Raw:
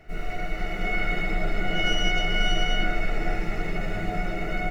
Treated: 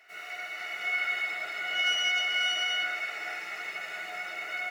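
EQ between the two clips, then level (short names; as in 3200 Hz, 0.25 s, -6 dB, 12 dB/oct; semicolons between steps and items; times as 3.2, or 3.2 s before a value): HPF 1300 Hz 12 dB/oct; +1.0 dB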